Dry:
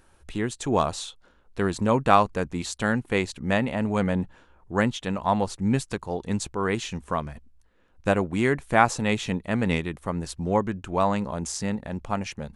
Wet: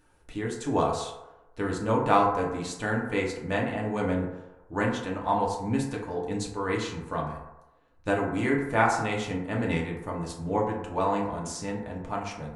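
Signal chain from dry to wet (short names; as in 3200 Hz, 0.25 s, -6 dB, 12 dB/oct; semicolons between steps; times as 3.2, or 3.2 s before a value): 6.39–8.11 bell 4100 Hz +7 dB 0.23 oct; FDN reverb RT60 1 s, low-frequency decay 0.7×, high-frequency decay 0.35×, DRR -3 dB; gain -7.5 dB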